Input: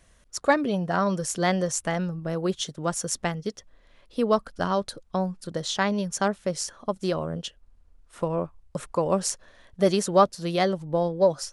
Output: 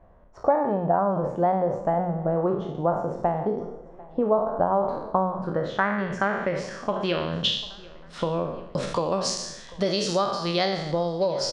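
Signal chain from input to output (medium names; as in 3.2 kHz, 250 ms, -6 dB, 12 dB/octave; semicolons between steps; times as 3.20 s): spectral sustain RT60 0.68 s; de-hum 45.66 Hz, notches 11; compression 4:1, threshold -27 dBFS, peak gain reduction 13.5 dB; low-pass sweep 810 Hz -> 4.6 kHz, 4.75–7.93 s; on a send: feedback delay 745 ms, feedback 51%, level -22 dB; on the sum: trim +4 dB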